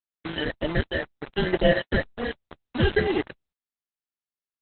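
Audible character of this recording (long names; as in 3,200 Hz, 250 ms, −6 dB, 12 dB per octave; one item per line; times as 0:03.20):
aliases and images of a low sample rate 1,200 Hz, jitter 0%
phaser sweep stages 8, 2 Hz, lowest notch 640–1,300 Hz
a quantiser's noise floor 6 bits, dither none
Opus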